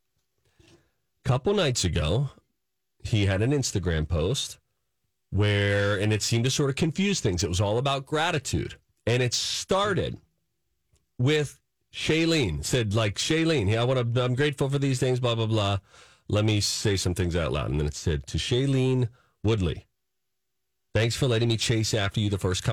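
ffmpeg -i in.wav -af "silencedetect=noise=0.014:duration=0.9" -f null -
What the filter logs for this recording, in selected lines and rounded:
silence_start: 0.00
silence_end: 1.26 | silence_duration: 1.26
silence_start: 10.15
silence_end: 11.19 | silence_duration: 1.05
silence_start: 19.79
silence_end: 20.95 | silence_duration: 1.16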